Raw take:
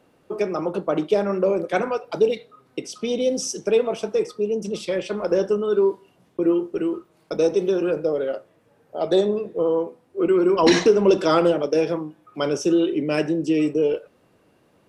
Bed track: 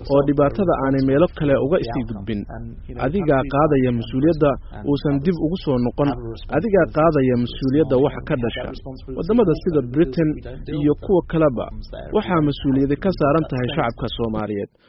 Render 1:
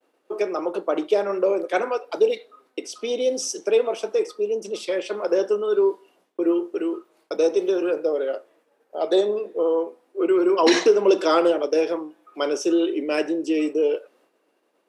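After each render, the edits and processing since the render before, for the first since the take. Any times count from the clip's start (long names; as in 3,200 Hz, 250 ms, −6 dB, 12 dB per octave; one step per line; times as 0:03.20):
high-pass filter 300 Hz 24 dB per octave
downward expander −55 dBFS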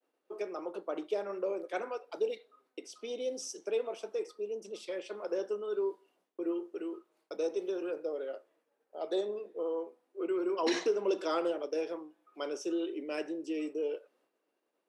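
level −13.5 dB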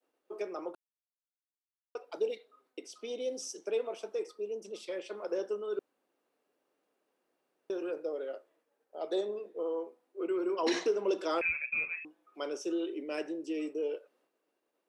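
0:00.75–0:01.95: silence
0:05.79–0:07.70: fill with room tone
0:11.41–0:12.05: voice inversion scrambler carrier 2,900 Hz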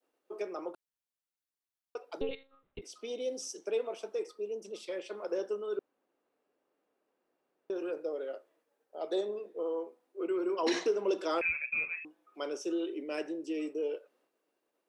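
0:02.21–0:02.82: one-pitch LPC vocoder at 8 kHz 270 Hz
0:05.77–0:07.76: high-shelf EQ 3,600 Hz −10 dB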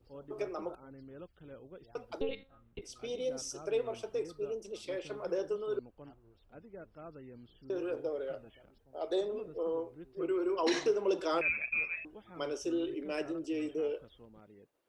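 mix in bed track −33.5 dB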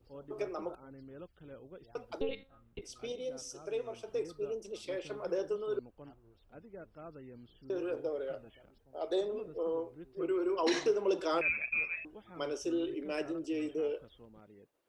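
0:03.12–0:04.08: tuned comb filter 83 Hz, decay 1.7 s, mix 40%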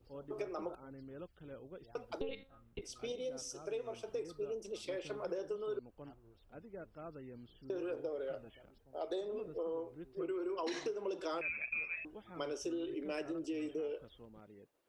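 downward compressor 6 to 1, threshold −36 dBFS, peak gain reduction 12 dB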